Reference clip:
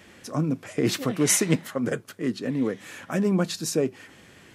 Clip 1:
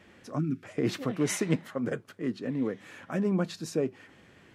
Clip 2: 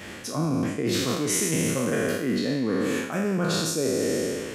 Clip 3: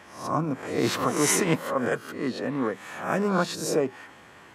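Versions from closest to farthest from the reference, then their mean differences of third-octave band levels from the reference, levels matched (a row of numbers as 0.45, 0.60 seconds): 1, 3, 2; 2.5, 5.5, 10.0 decibels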